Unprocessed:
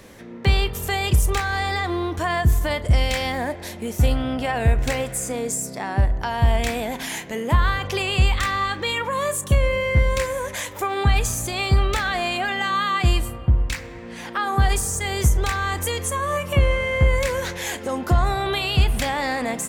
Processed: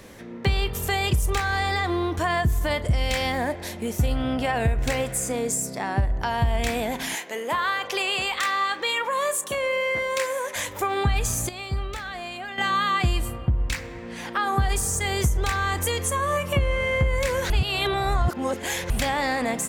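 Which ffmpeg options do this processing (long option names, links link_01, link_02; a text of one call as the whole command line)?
ffmpeg -i in.wav -filter_complex "[0:a]asettb=1/sr,asplit=3[link_01][link_02][link_03];[link_01]atrim=end=7.154[link_04];[link_02]atrim=start=7.15:end=10.56,asetpts=PTS-STARTPTS,afade=type=in:duration=0.004:curve=qsin,afade=type=out:start_time=3.406:duration=0.004:curve=qsin,highpass=430[link_05];[link_03]atrim=start=10.556[link_06];[link_04][link_05]acrossfade=duration=0.004:curve1=hsin:curve2=qsin[link_07];[link_07][link_06]acrossfade=duration=0.004:curve1=qsin:curve2=hsin,asplit=5[link_08][link_09][link_10][link_11][link_12];[link_08]atrim=end=11.492[link_13];[link_09]atrim=start=11.488:end=12.582,asetpts=PTS-STARTPTS,volume=-10.5dB[link_14];[link_10]atrim=start=12.578:end=17.502[link_15];[link_11]atrim=start=17.498:end=18.902,asetpts=PTS-STARTPTS,areverse[link_16];[link_12]atrim=start=18.898[link_17];[link_13][link_14]acrossfade=duration=0.004:curve1=hsin:curve2=hsin[link_18];[link_18][link_15]acrossfade=duration=0.004:curve1=hsin:curve2=hsin[link_19];[link_19][link_16]acrossfade=duration=0.004:curve1=hsin:curve2=hsin[link_20];[link_20][link_17]acrossfade=duration=0.004:curve1=hsin:curve2=hsin,acompressor=threshold=-18dB:ratio=6" out.wav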